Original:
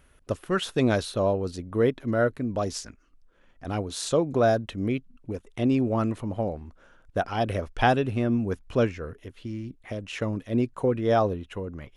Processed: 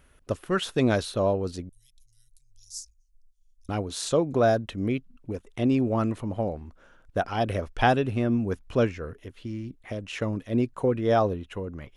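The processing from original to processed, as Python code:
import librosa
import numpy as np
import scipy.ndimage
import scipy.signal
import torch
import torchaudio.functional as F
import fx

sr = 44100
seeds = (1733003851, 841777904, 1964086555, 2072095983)

y = fx.cheby2_bandstop(x, sr, low_hz=210.0, high_hz=1200.0, order=4, stop_db=80, at=(1.69, 3.69))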